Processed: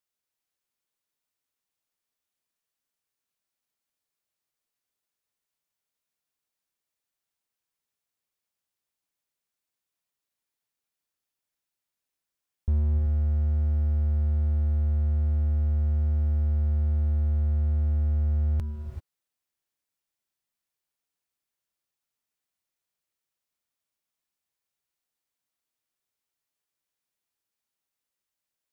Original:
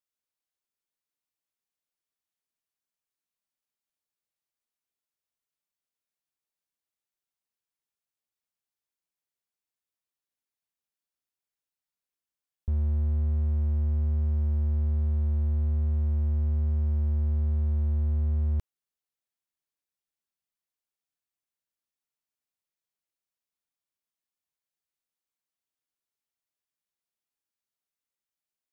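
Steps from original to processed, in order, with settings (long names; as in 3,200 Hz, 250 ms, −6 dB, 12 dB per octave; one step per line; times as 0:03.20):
on a send: convolution reverb, pre-delay 3 ms, DRR 4.5 dB
on the sum: level +3 dB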